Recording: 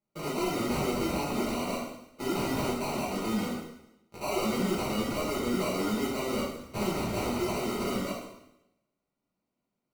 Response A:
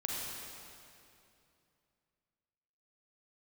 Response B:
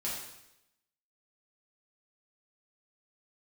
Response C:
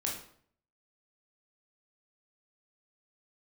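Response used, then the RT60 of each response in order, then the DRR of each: B; 2.7 s, 0.85 s, 0.60 s; -3.5 dB, -7.5 dB, -2.5 dB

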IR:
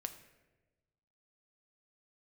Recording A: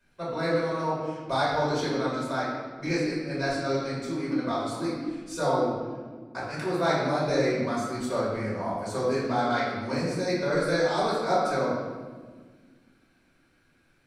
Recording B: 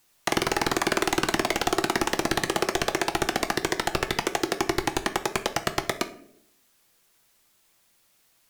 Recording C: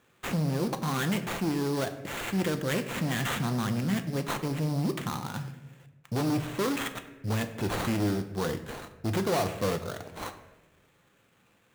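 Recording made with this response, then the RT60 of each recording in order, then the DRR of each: C; 1.6 s, 0.75 s, 1.2 s; -8.0 dB, 8.0 dB, 7.5 dB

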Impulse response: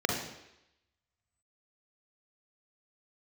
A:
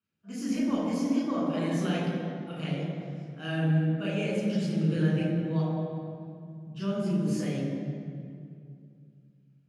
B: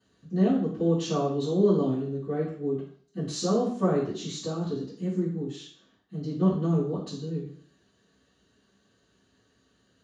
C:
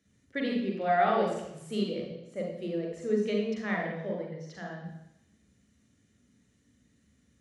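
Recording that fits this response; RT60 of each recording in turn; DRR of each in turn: C; 2.4 s, 0.55 s, 0.85 s; -5.5 dB, -12.0 dB, -1.0 dB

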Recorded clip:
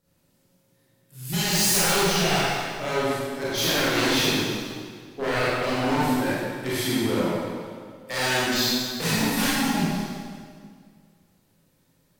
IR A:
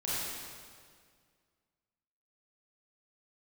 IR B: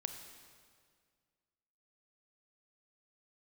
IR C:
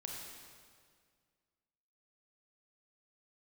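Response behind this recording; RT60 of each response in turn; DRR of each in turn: A; 1.9 s, 1.9 s, 1.9 s; -9.5 dB, 6.0 dB, -1.0 dB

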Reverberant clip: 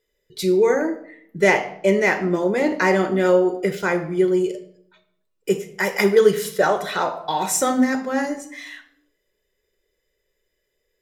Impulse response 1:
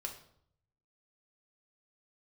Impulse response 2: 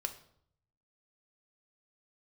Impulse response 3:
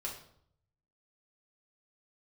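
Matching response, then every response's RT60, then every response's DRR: 2; 0.65 s, 0.65 s, 0.65 s; 1.5 dB, 6.0 dB, -3.5 dB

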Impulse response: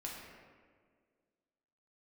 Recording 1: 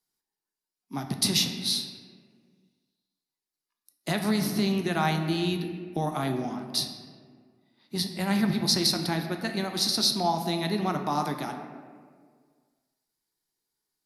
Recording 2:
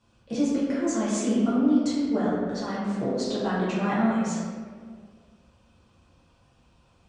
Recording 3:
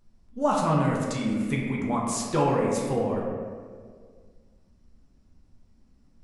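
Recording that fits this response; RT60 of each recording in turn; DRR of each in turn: 3; 1.8 s, 1.8 s, 1.8 s; 4.5 dB, -9.5 dB, -3.5 dB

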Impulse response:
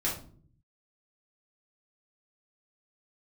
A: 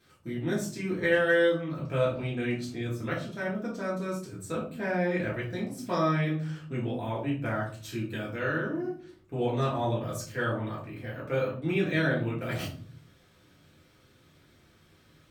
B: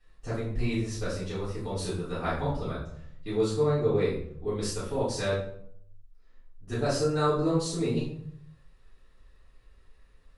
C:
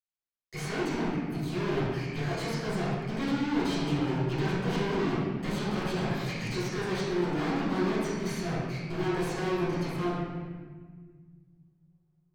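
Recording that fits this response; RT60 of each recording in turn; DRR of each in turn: A; 0.50 s, 0.65 s, 1.6 s; -6.5 dB, -12.5 dB, -12.5 dB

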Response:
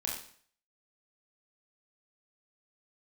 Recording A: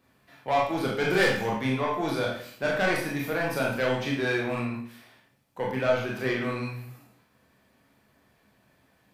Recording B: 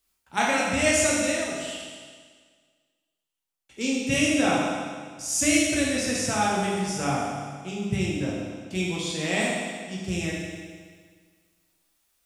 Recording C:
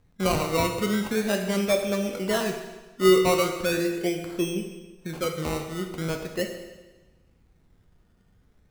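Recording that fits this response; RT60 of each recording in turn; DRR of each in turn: A; 0.55 s, 1.7 s, 1.2 s; -3.0 dB, -5.5 dB, 3.5 dB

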